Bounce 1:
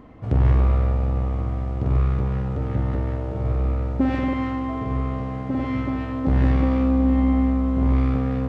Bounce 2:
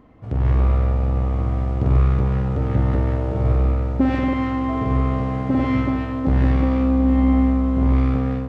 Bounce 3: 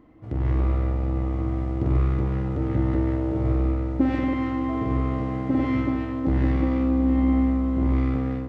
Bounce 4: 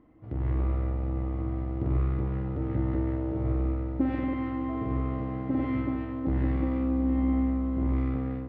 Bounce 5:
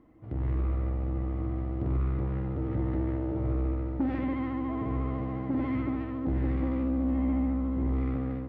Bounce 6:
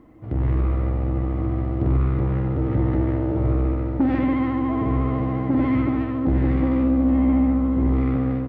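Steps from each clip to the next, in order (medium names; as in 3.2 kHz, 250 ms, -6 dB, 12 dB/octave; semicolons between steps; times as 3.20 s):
level rider gain up to 12 dB; trim -5 dB
small resonant body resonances 320/2000 Hz, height 13 dB, ringing for 95 ms; trim -5.5 dB
distance through air 230 m; trim -5 dB
saturation -20.5 dBFS, distortion -20 dB; vibrato 14 Hz 45 cents
delay 100 ms -13.5 dB; trim +9 dB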